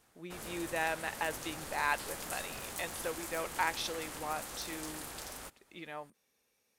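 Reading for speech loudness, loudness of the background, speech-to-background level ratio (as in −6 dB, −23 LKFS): −38.0 LKFS, −42.5 LKFS, 4.5 dB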